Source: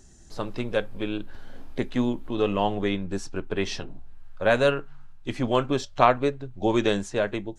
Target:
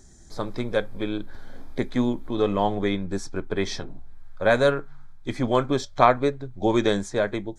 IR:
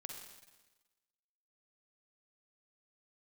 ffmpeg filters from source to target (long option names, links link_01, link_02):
-af "asuperstop=centerf=2800:order=4:qfactor=4.3,volume=1.5dB"